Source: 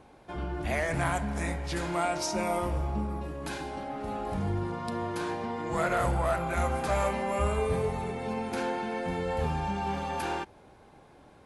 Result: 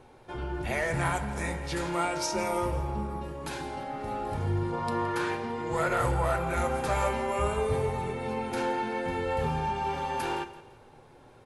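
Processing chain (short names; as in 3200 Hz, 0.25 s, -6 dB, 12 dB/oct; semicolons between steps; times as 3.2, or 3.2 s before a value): 4.72–5.36 bell 620 Hz -> 2200 Hz +7.5 dB 1.5 oct; feedback echo 0.168 s, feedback 36%, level -16 dB; reverb RT60 0.20 s, pre-delay 7 ms, DRR 10 dB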